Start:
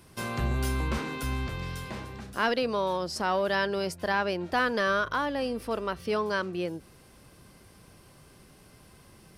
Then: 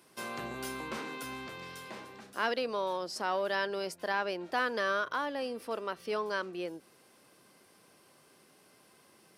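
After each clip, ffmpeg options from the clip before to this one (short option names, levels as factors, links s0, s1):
-af "highpass=280,volume=0.596"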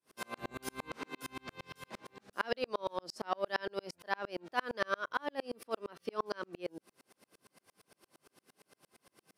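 -af "aeval=exprs='val(0)*pow(10,-40*if(lt(mod(-8.7*n/s,1),2*abs(-8.7)/1000),1-mod(-8.7*n/s,1)/(2*abs(-8.7)/1000),(mod(-8.7*n/s,1)-2*abs(-8.7)/1000)/(1-2*abs(-8.7)/1000))/20)':c=same,volume=1.78"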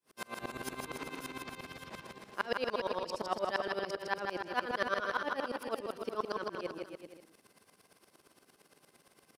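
-af "aecho=1:1:160|288|390.4|472.3|537.9:0.631|0.398|0.251|0.158|0.1"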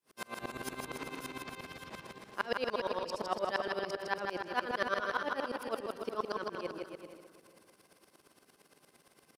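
-filter_complex "[0:a]asplit=2[s0][s1];[s1]adelay=443,lowpass=f=2000:p=1,volume=0.158,asplit=2[s2][s3];[s3]adelay=443,lowpass=f=2000:p=1,volume=0.32,asplit=2[s4][s5];[s5]adelay=443,lowpass=f=2000:p=1,volume=0.32[s6];[s0][s2][s4][s6]amix=inputs=4:normalize=0"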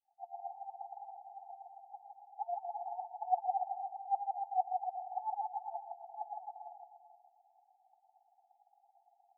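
-af "asuperpass=centerf=780:order=20:qfactor=4,volume=2.51"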